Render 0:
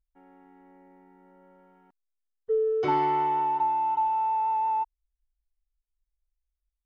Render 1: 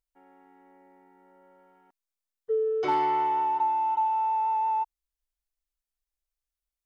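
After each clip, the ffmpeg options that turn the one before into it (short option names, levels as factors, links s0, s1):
-af "bass=f=250:g=-11,treble=f=4000:g=3,asoftclip=type=hard:threshold=0.126"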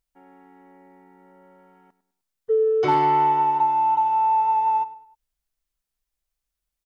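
-filter_complex "[0:a]equalizer=f=130:t=o:w=1:g=11.5,asplit=2[s0][s1];[s1]adelay=102,lowpass=f=3200:p=1,volume=0.178,asplit=2[s2][s3];[s3]adelay=102,lowpass=f=3200:p=1,volume=0.38,asplit=2[s4][s5];[s5]adelay=102,lowpass=f=3200:p=1,volume=0.38[s6];[s0][s2][s4][s6]amix=inputs=4:normalize=0,volume=1.88"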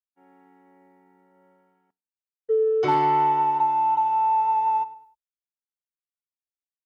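-af "agate=range=0.0224:threshold=0.00501:ratio=3:detection=peak,highpass=41,volume=0.841"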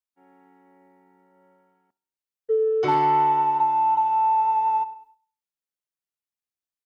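-af "aecho=1:1:67|134|201|268:0.0794|0.0453|0.0258|0.0147"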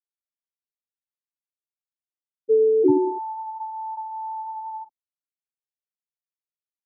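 -af "afftfilt=real='re*gte(hypot(re,im),0.251)':imag='im*gte(hypot(re,im),0.251)':win_size=1024:overlap=0.75,lowpass=f=290:t=q:w=3.4,volume=2.24"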